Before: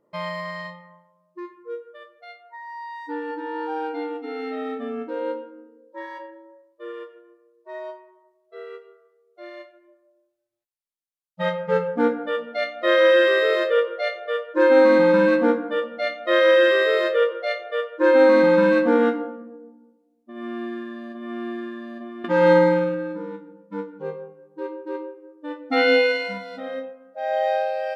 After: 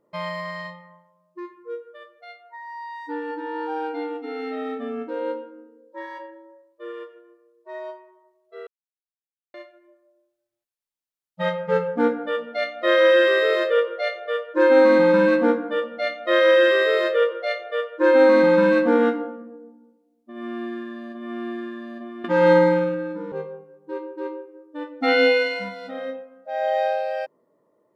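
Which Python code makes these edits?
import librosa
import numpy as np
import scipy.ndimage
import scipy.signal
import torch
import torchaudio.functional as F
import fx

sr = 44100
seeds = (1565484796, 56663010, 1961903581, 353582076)

y = fx.edit(x, sr, fx.silence(start_s=8.67, length_s=0.87),
    fx.cut(start_s=23.32, length_s=0.69), tone=tone)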